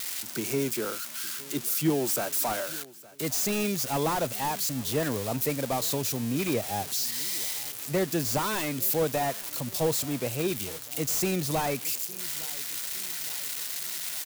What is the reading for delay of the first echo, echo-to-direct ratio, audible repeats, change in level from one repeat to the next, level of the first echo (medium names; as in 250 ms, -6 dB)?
862 ms, -20.0 dB, 3, -5.5 dB, -21.5 dB